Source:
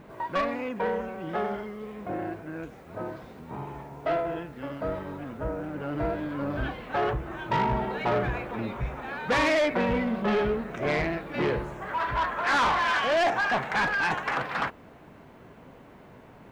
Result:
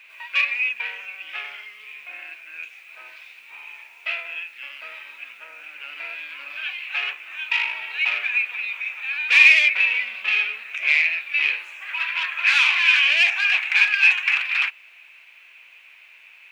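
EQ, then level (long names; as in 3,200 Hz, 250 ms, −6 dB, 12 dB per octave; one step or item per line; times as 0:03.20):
high-pass with resonance 2,500 Hz, resonance Q 11
+4.0 dB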